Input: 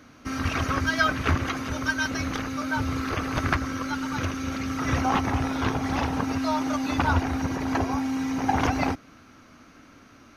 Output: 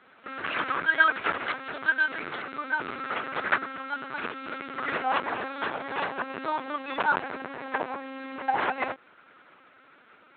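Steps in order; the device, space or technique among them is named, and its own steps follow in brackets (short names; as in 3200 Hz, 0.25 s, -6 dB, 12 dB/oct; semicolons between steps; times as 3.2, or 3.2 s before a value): talking toy (LPC vocoder at 8 kHz pitch kept; HPF 430 Hz 12 dB/oct; bell 1600 Hz +4.5 dB 0.36 oct)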